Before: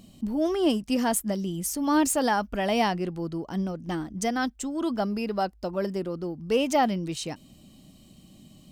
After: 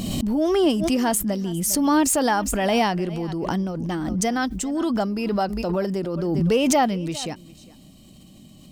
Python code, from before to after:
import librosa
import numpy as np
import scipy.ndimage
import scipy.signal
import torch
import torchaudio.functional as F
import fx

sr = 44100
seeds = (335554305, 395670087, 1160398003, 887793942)

p1 = x + fx.echo_single(x, sr, ms=404, db=-21.0, dry=0)
p2 = fx.pre_swell(p1, sr, db_per_s=23.0)
y = p2 * 10.0 ** (3.0 / 20.0)